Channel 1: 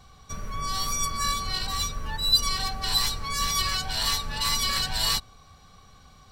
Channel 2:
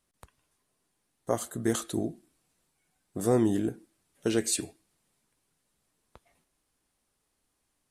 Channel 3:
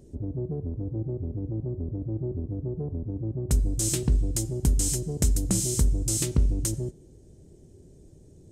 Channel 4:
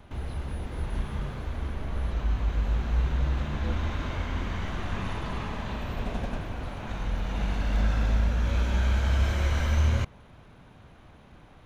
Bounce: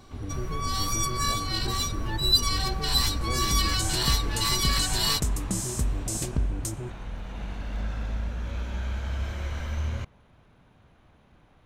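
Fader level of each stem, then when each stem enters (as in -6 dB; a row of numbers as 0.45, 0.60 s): -0.5, -13.5, -4.5, -6.5 dB; 0.00, 0.00, 0.00, 0.00 s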